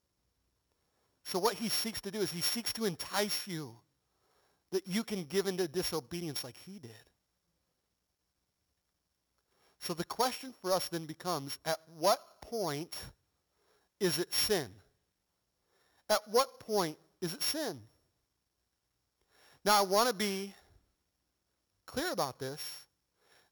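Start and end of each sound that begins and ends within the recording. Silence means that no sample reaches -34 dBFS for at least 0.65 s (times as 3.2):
1.28–3.62
4.74–6.46
9.83–12.98
14.01–14.65
16.1–17.71
19.66–20.44
21.97–22.69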